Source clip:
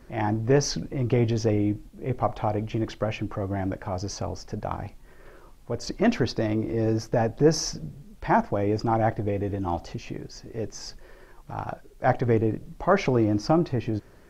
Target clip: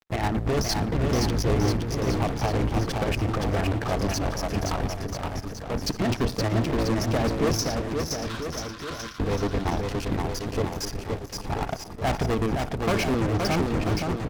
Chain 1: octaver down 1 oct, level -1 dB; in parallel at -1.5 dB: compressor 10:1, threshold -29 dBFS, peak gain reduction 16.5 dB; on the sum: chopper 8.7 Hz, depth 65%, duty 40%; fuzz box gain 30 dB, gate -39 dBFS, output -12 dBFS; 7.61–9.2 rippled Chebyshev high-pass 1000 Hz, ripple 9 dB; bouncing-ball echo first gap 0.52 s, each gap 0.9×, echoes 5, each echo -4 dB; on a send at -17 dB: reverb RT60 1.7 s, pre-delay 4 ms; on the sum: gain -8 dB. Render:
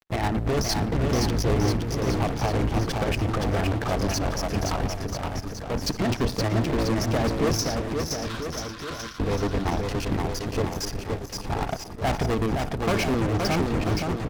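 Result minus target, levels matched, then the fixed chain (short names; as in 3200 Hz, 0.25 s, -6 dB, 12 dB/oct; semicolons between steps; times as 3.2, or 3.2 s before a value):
compressor: peak gain reduction -6 dB
octaver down 1 oct, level -1 dB; in parallel at -1.5 dB: compressor 10:1, threshold -35.5 dBFS, peak gain reduction 22 dB; on the sum: chopper 8.7 Hz, depth 65%, duty 40%; fuzz box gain 30 dB, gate -39 dBFS, output -12 dBFS; 7.61–9.2 rippled Chebyshev high-pass 1000 Hz, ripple 9 dB; bouncing-ball echo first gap 0.52 s, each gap 0.9×, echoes 5, each echo -4 dB; on a send at -17 dB: reverb RT60 1.7 s, pre-delay 4 ms; on the sum: gain -8 dB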